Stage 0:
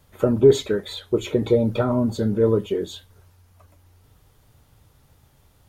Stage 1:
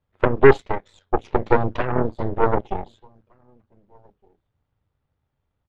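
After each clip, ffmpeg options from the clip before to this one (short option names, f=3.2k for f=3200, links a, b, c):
-filter_complex "[0:a]lowpass=2.7k,asplit=2[a][b];[b]adelay=1516,volume=-18dB,highshelf=f=4k:g=-34.1[c];[a][c]amix=inputs=2:normalize=0,aeval=exprs='0.668*(cos(1*acos(clip(val(0)/0.668,-1,1)))-cos(1*PI/2))+0.188*(cos(6*acos(clip(val(0)/0.668,-1,1)))-cos(6*PI/2))+0.0841*(cos(7*acos(clip(val(0)/0.668,-1,1)))-cos(7*PI/2))':c=same"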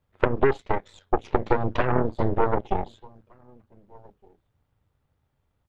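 -af "acompressor=threshold=-18dB:ratio=16,volume=3dB"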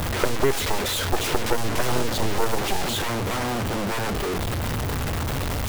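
-af "aeval=exprs='val(0)+0.5*0.158*sgn(val(0))':c=same,volume=-3.5dB"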